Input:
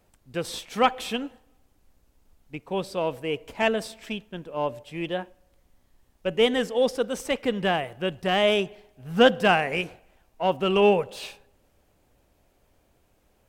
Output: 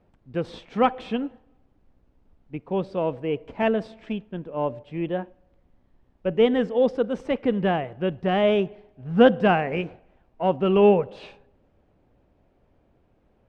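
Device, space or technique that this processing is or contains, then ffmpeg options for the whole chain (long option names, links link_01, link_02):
phone in a pocket: -filter_complex "[0:a]asettb=1/sr,asplit=3[link_01][link_02][link_03];[link_01]atrim=end=4.984[link_04];[link_02]atrim=start=4.98:end=6.34,asetpts=PTS-STARTPTS,afade=type=in:duration=0.004:curve=qsin,afade=type=out:start_time=1.356:duration=0.004:curve=qsin,acrossover=split=3700[link_05][link_06];[link_06]acompressor=threshold=-55dB:ratio=4:attack=1:release=60[link_07];[link_05][link_07]amix=inputs=2:normalize=0[link_08];[link_03]atrim=start=6.336[link_09];[link_04][link_08]acrossfade=duration=0.004:curve1=hsin:curve2=qsin[link_10];[link_10][link_09]acrossfade=duration=0.004:curve1=qsin:curve2=hsin,lowpass=3900,equalizer=frequency=200:width_type=o:width=2.6:gain=5,highshelf=frequency=2400:gain=-10"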